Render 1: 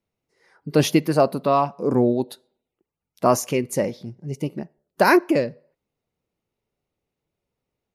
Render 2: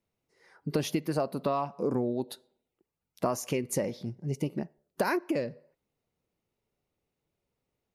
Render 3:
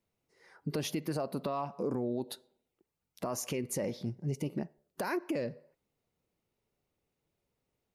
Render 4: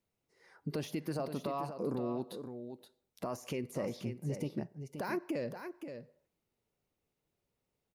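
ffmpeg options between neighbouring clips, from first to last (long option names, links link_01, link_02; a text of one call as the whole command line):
ffmpeg -i in.wav -af "acompressor=threshold=-24dB:ratio=8,volume=-1.5dB" out.wav
ffmpeg -i in.wav -af "alimiter=level_in=1dB:limit=-24dB:level=0:latency=1:release=66,volume=-1dB" out.wav
ffmpeg -i in.wav -af "deesser=1,aecho=1:1:524:0.376,volume=-2.5dB" out.wav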